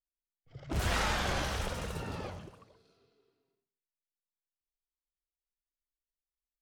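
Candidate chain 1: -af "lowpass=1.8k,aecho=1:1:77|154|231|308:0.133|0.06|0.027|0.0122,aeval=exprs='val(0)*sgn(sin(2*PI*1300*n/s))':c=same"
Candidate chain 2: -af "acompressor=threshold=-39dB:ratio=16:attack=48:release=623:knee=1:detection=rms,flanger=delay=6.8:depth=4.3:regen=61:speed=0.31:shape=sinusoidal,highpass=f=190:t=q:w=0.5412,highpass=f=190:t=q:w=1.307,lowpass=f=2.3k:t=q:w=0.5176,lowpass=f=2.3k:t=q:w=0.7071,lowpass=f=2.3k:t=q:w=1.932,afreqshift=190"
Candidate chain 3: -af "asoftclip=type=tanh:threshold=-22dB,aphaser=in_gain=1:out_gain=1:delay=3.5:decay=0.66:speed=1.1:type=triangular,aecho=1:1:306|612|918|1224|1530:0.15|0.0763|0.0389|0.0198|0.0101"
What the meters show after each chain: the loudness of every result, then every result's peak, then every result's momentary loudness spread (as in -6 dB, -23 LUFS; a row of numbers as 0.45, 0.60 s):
-33.5, -51.5, -32.0 LUFS; -20.5, -32.0, -16.0 dBFS; 19, 15, 15 LU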